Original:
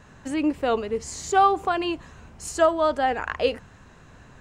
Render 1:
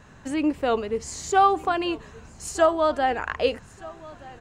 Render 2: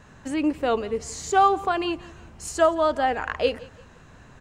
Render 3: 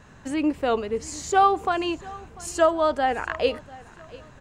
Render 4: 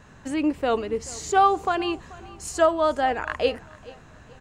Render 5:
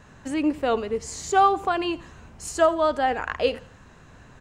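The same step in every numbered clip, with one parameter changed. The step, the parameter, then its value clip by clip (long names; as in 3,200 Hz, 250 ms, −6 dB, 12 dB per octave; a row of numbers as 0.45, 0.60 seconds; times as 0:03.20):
repeating echo, delay time: 1,225, 171, 694, 433, 85 milliseconds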